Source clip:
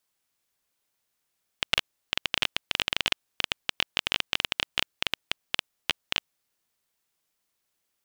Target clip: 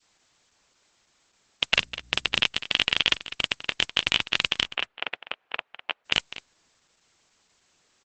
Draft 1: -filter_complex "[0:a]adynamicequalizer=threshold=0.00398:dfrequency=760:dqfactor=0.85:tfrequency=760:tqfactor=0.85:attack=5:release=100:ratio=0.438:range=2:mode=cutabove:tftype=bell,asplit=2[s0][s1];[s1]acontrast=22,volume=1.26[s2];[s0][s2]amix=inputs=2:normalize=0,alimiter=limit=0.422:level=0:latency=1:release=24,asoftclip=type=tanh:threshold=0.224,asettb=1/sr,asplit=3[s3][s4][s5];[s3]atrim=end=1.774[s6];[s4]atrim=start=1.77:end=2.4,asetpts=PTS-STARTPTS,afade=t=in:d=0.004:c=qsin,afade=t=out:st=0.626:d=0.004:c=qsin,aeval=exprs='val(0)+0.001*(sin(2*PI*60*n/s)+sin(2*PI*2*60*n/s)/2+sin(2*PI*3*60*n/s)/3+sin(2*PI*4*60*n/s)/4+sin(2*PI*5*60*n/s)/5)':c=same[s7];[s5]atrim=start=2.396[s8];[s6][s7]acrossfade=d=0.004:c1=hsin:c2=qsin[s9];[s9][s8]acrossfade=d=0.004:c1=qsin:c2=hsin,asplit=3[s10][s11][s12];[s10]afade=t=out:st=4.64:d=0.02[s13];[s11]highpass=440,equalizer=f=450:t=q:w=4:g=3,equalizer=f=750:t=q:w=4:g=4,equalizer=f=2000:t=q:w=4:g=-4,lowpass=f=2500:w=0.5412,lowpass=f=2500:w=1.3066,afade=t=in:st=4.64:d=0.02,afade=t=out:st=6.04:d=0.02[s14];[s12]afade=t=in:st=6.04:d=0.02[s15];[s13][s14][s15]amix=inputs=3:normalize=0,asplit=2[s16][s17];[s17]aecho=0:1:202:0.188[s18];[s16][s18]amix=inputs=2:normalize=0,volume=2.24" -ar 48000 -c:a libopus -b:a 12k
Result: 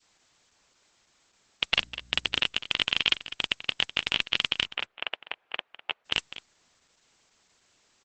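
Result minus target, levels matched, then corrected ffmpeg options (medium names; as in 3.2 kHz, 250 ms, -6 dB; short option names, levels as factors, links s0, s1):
saturation: distortion +11 dB
-filter_complex "[0:a]adynamicequalizer=threshold=0.00398:dfrequency=760:dqfactor=0.85:tfrequency=760:tqfactor=0.85:attack=5:release=100:ratio=0.438:range=2:mode=cutabove:tftype=bell,asplit=2[s0][s1];[s1]acontrast=22,volume=1.26[s2];[s0][s2]amix=inputs=2:normalize=0,alimiter=limit=0.422:level=0:latency=1:release=24,asoftclip=type=tanh:threshold=0.531,asettb=1/sr,asplit=3[s3][s4][s5];[s3]atrim=end=1.774[s6];[s4]atrim=start=1.77:end=2.4,asetpts=PTS-STARTPTS,afade=t=in:d=0.004:c=qsin,afade=t=out:st=0.626:d=0.004:c=qsin,aeval=exprs='val(0)+0.001*(sin(2*PI*60*n/s)+sin(2*PI*2*60*n/s)/2+sin(2*PI*3*60*n/s)/3+sin(2*PI*4*60*n/s)/4+sin(2*PI*5*60*n/s)/5)':c=same[s7];[s5]atrim=start=2.396[s8];[s6][s7]acrossfade=d=0.004:c1=hsin:c2=qsin[s9];[s9][s8]acrossfade=d=0.004:c1=qsin:c2=hsin,asplit=3[s10][s11][s12];[s10]afade=t=out:st=4.64:d=0.02[s13];[s11]highpass=440,equalizer=f=450:t=q:w=4:g=3,equalizer=f=750:t=q:w=4:g=4,equalizer=f=2000:t=q:w=4:g=-4,lowpass=f=2500:w=0.5412,lowpass=f=2500:w=1.3066,afade=t=in:st=4.64:d=0.02,afade=t=out:st=6.04:d=0.02[s14];[s12]afade=t=in:st=6.04:d=0.02[s15];[s13][s14][s15]amix=inputs=3:normalize=0,asplit=2[s16][s17];[s17]aecho=0:1:202:0.188[s18];[s16][s18]amix=inputs=2:normalize=0,volume=2.24" -ar 48000 -c:a libopus -b:a 12k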